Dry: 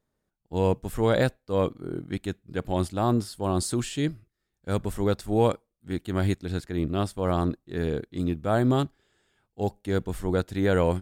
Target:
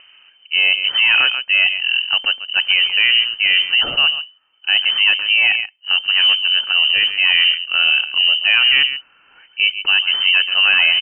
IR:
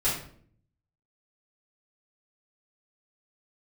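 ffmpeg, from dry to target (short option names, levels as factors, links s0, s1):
-filter_complex "[0:a]aecho=1:1:136:0.141,asplit=3[s0][s1][s2];[s0]afade=t=out:st=6.04:d=0.02[s3];[s1]adynamicsmooth=sensitivity=1.5:basefreq=1300,afade=t=in:st=6.04:d=0.02,afade=t=out:st=6.55:d=0.02[s4];[s2]afade=t=in:st=6.55:d=0.02[s5];[s3][s4][s5]amix=inputs=3:normalize=0,apsyclip=18.8,acompressor=mode=upward:threshold=0.0562:ratio=2.5,lowpass=f=2600:t=q:w=0.5098,lowpass=f=2600:t=q:w=0.6013,lowpass=f=2600:t=q:w=0.9,lowpass=f=2600:t=q:w=2.563,afreqshift=-3100,volume=0.355"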